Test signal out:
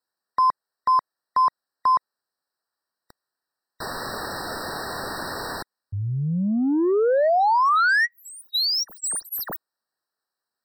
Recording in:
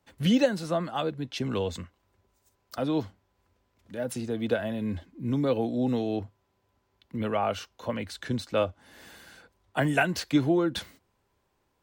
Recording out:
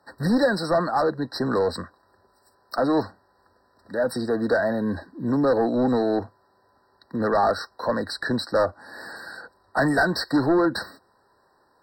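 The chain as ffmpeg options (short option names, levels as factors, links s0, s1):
-filter_complex "[0:a]asplit=2[s0][s1];[s1]highpass=f=720:p=1,volume=12.6,asoftclip=type=tanh:threshold=0.266[s2];[s0][s2]amix=inputs=2:normalize=0,lowpass=f=3000:p=1,volume=0.501,afftfilt=real='re*eq(mod(floor(b*sr/1024/1900),2),0)':imag='im*eq(mod(floor(b*sr/1024/1900),2),0)':win_size=1024:overlap=0.75"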